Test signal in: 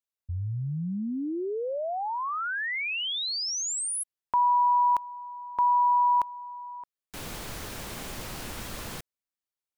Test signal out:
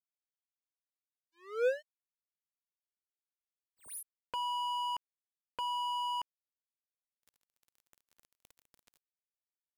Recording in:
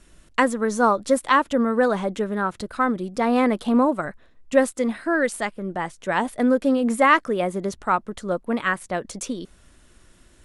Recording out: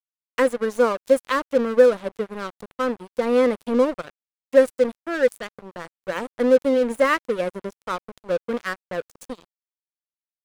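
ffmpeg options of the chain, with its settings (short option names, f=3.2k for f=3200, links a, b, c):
-af "equalizer=f=500:t=o:w=0.33:g=12,equalizer=f=800:t=o:w=0.33:g=-11,equalizer=f=10k:t=o:w=0.33:g=4,aeval=exprs='sgn(val(0))*max(abs(val(0))-0.0447,0)':c=same,volume=-2.5dB"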